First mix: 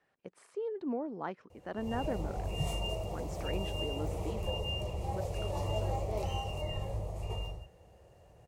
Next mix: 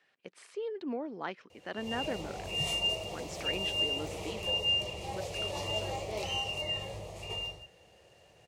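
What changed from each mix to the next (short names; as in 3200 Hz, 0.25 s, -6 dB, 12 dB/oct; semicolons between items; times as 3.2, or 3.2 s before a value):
master: add weighting filter D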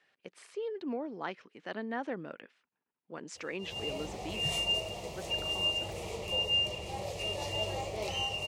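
background: entry +1.85 s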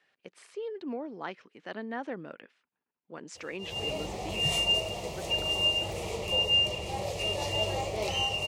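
background +4.5 dB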